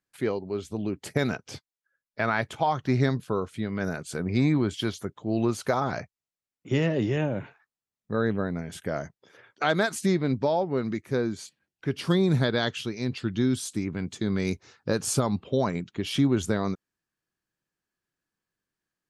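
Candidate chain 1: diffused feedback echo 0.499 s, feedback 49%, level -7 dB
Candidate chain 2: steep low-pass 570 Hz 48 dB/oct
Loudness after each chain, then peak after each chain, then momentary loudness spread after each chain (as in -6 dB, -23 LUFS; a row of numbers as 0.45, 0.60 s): -27.5, -29.0 LUFS; -10.0, -11.5 dBFS; 11, 11 LU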